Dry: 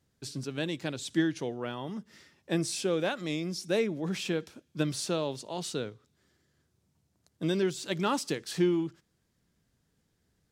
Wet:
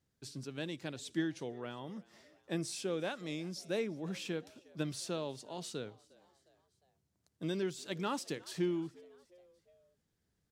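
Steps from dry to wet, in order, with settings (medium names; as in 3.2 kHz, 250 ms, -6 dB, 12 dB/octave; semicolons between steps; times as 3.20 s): frequency-shifting echo 357 ms, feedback 53%, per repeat +90 Hz, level -24 dB; trim -7.5 dB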